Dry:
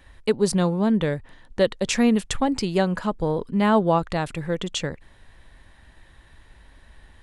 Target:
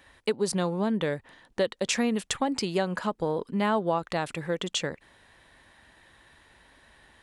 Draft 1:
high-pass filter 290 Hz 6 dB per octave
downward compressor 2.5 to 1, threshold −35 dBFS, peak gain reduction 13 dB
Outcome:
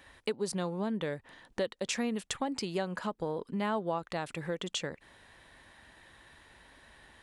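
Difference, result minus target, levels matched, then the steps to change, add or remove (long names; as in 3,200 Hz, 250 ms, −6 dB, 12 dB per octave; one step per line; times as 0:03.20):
downward compressor: peak gain reduction +6.5 dB
change: downward compressor 2.5 to 1, threshold −24 dBFS, peak gain reduction 6.5 dB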